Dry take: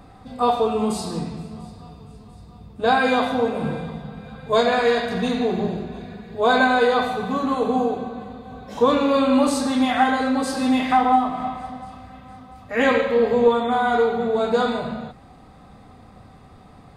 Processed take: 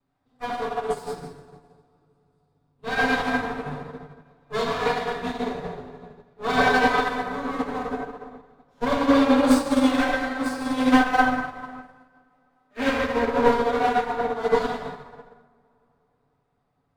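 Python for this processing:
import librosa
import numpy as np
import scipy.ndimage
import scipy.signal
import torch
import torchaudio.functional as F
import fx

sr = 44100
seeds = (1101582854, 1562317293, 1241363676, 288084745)

y = fx.lower_of_two(x, sr, delay_ms=7.0)
y = fx.highpass(y, sr, hz=150.0, slope=24, at=(11.96, 12.77))
y = fx.rev_plate(y, sr, seeds[0], rt60_s=3.4, hf_ratio=0.45, predelay_ms=0, drr_db=-4.0)
y = fx.upward_expand(y, sr, threshold_db=-30.0, expansion=2.5)
y = y * librosa.db_to_amplitude(-1.0)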